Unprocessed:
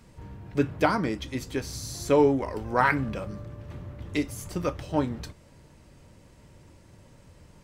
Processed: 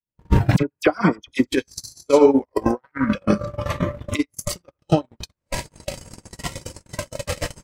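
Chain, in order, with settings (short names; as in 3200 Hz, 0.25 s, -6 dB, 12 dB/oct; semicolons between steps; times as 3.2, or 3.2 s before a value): recorder AGC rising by 62 dB/s; limiter -13.5 dBFS, peak gain reduction 8.5 dB; on a send: narrowing echo 85 ms, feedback 57%, band-pass 1300 Hz, level -4 dB; on the sum: transient shaper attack +9 dB, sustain -3 dB; gate -18 dBFS, range -46 dB; 0.56–1.47 dispersion lows, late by 46 ms, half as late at 2000 Hz; spectral noise reduction 13 dB; gain +7 dB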